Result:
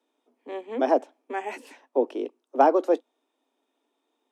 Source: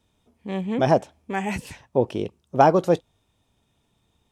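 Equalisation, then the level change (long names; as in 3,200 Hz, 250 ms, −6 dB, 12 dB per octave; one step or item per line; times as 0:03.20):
Butterworth high-pass 250 Hz 96 dB per octave
high-shelf EQ 2,200 Hz −10 dB
−1.5 dB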